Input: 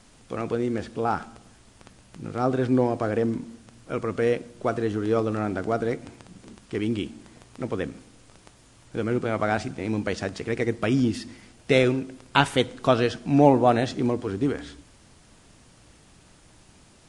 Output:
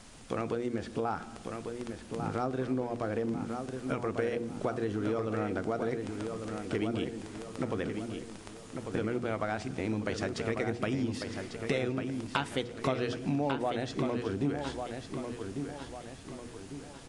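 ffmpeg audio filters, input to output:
-filter_complex "[0:a]bandreject=f=60:t=h:w=6,bandreject=f=120:t=h:w=6,bandreject=f=180:t=h:w=6,bandreject=f=240:t=h:w=6,bandreject=f=300:t=h:w=6,bandreject=f=360:t=h:w=6,bandreject=f=420:t=h:w=6,bandreject=f=480:t=h:w=6,acompressor=threshold=-32dB:ratio=6,asplit=2[a][b];[b]adelay=1147,lowpass=f=5k:p=1,volume=-6dB,asplit=2[c][d];[d]adelay=1147,lowpass=f=5k:p=1,volume=0.45,asplit=2[e][f];[f]adelay=1147,lowpass=f=5k:p=1,volume=0.45,asplit=2[g][h];[h]adelay=1147,lowpass=f=5k:p=1,volume=0.45,asplit=2[i][j];[j]adelay=1147,lowpass=f=5k:p=1,volume=0.45[k];[c][e][g][i][k]amix=inputs=5:normalize=0[l];[a][l]amix=inputs=2:normalize=0,volume=2.5dB"

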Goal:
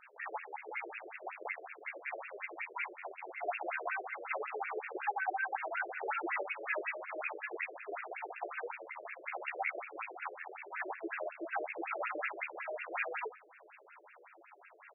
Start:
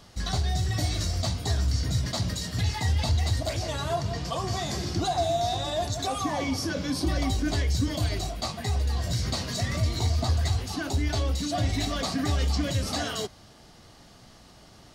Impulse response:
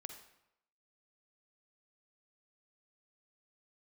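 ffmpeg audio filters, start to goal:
-filter_complex "[0:a]asplit=2[a][b];[b]adelay=16,volume=-10dB[c];[a][c]amix=inputs=2:normalize=0,flanger=delay=18:depth=5.9:speed=0.22,aeval=exprs='max(val(0),0)':c=same,acrossover=split=4900[d][e];[e]acompressor=threshold=-51dB:ratio=4:attack=1:release=60[f];[d][f]amix=inputs=2:normalize=0,highshelf=f=3.9k:t=q:w=3:g=-13.5,bandreject=f=112.2:t=h:w=4,bandreject=f=224.4:t=h:w=4,bandreject=f=336.6:t=h:w=4,bandreject=f=448.8:t=h:w=4,bandreject=f=561:t=h:w=4,bandreject=f=673.2:t=h:w=4,bandreject=f=785.4:t=h:w=4,bandreject=f=897.6:t=h:w=4,bandreject=f=1.0098k:t=h:w=4,bandreject=f=1.122k:t=h:w=4,bandreject=f=1.2342k:t=h:w=4,bandreject=f=1.3464k:t=h:w=4,bandreject=f=1.4586k:t=h:w=4,bandreject=f=1.5708k:t=h:w=4,bandreject=f=1.683k:t=h:w=4,bandreject=f=1.7952k:t=h:w=4,bandreject=f=1.9074k:t=h:w=4,bandreject=f=2.0196k:t=h:w=4,bandreject=f=2.1318k:t=h:w=4,bandreject=f=2.244k:t=h:w=4,bandreject=f=2.3562k:t=h:w=4,bandreject=f=2.4684k:t=h:w=4,bandreject=f=2.5806k:t=h:w=4,bandreject=f=2.6928k:t=h:w=4,bandreject=f=2.805k:t=h:w=4,bandreject=f=2.9172k:t=h:w=4,bandreject=f=3.0294k:t=h:w=4,bandreject=f=3.1416k:t=h:w=4,bandreject=f=3.2538k:t=h:w=4,bandreject=f=3.366k:t=h:w=4,flanger=delay=9.8:depth=4.9:regen=13:speed=0.9:shape=triangular,acompressor=threshold=-34dB:ratio=12,asetrate=49501,aresample=44100,atempo=0.890899,aemphasis=mode=production:type=75fm,aecho=1:1:108:0.112,afftfilt=real='re*between(b*sr/1024,440*pow(2000/440,0.5+0.5*sin(2*PI*5.4*pts/sr))/1.41,440*pow(2000/440,0.5+0.5*sin(2*PI*5.4*pts/sr))*1.41)':imag='im*between(b*sr/1024,440*pow(2000/440,0.5+0.5*sin(2*PI*5.4*pts/sr))/1.41,440*pow(2000/440,0.5+0.5*sin(2*PI*5.4*pts/sr))*1.41)':win_size=1024:overlap=0.75,volume=12dB"

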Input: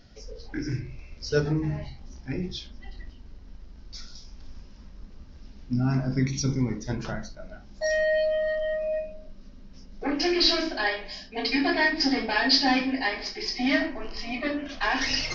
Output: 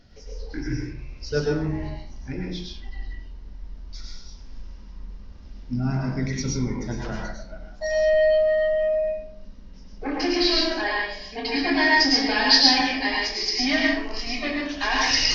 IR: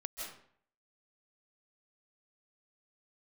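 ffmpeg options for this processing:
-filter_complex "[0:a]asetnsamples=n=441:p=0,asendcmd='11.74 highshelf g 9',highshelf=f=4k:g=-3[a];[1:a]atrim=start_sample=2205,asetrate=66150,aresample=44100[b];[a][b]afir=irnorm=-1:irlink=0,volume=6.5dB"

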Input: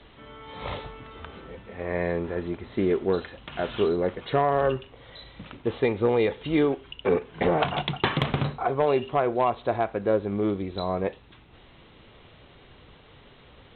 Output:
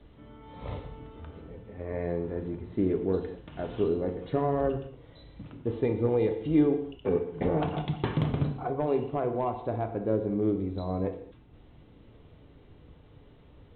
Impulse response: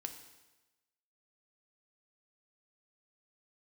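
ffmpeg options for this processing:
-filter_complex "[0:a]tiltshelf=f=640:g=8[a];[1:a]atrim=start_sample=2205,afade=t=out:st=0.28:d=0.01,atrim=end_sample=12789[b];[a][b]afir=irnorm=-1:irlink=0,volume=-4dB"

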